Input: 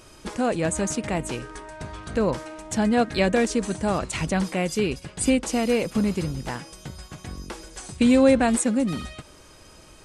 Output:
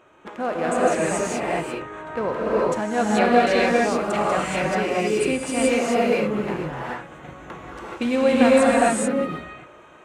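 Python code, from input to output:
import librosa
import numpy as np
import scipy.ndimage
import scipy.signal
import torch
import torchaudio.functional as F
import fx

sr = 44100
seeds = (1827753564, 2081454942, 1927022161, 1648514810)

y = fx.wiener(x, sr, points=9)
y = fx.highpass(y, sr, hz=760.0, slope=6)
y = fx.high_shelf(y, sr, hz=3200.0, db=-11.5)
y = fx.rev_gated(y, sr, seeds[0], gate_ms=460, shape='rising', drr_db=-7.0)
y = F.gain(torch.from_numpy(y), 3.0).numpy()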